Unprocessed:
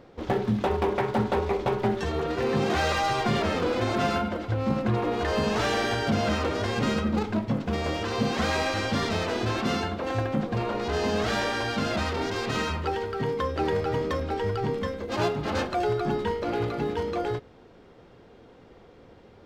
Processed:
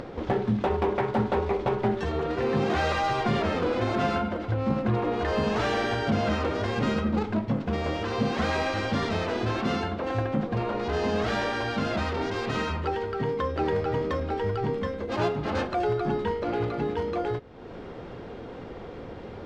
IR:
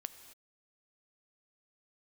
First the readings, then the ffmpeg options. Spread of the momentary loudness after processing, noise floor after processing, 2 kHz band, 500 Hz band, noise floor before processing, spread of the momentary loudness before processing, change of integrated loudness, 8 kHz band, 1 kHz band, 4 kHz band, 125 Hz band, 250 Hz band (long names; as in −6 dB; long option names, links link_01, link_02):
5 LU, −40 dBFS, −1.0 dB, 0.0 dB, −52 dBFS, 4 LU, −0.5 dB, −7.0 dB, −0.5 dB, −3.5 dB, 0.0 dB, 0.0 dB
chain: -af "acompressor=mode=upward:threshold=-27dB:ratio=2.5,aemphasis=mode=reproduction:type=50kf"